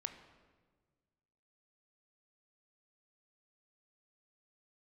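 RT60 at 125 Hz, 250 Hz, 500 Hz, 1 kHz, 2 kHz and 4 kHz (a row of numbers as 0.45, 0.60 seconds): 2.1, 1.9, 1.7, 1.3, 1.2, 1.0 seconds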